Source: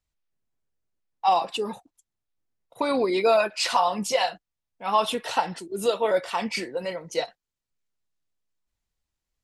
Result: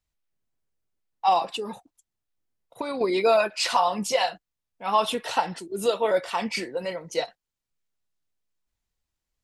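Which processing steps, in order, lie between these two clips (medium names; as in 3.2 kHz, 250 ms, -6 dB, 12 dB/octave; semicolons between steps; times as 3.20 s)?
1.49–3.01 s: compression 6:1, threshold -28 dBFS, peak gain reduction 7.5 dB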